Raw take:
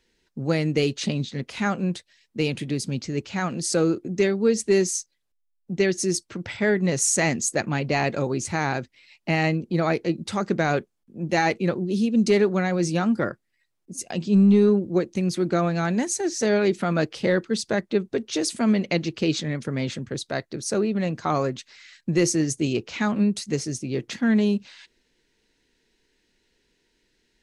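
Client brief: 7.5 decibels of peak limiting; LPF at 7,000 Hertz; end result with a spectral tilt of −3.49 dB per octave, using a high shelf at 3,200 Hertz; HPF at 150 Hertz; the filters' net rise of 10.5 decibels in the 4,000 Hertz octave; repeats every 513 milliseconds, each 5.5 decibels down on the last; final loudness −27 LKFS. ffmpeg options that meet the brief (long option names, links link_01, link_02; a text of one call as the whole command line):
ffmpeg -i in.wav -af "highpass=150,lowpass=7000,highshelf=frequency=3200:gain=6.5,equalizer=frequency=4000:width_type=o:gain=8.5,alimiter=limit=-12.5dB:level=0:latency=1,aecho=1:1:513|1026|1539|2052|2565|3078|3591:0.531|0.281|0.149|0.079|0.0419|0.0222|0.0118,volume=-3.5dB" out.wav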